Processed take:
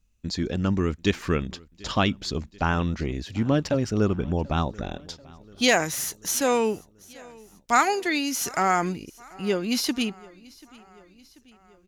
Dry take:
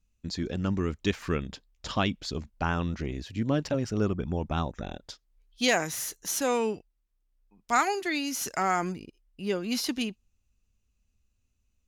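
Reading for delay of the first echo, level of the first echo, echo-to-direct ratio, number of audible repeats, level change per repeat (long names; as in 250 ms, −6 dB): 737 ms, −24.0 dB, −22.0 dB, 3, −4.5 dB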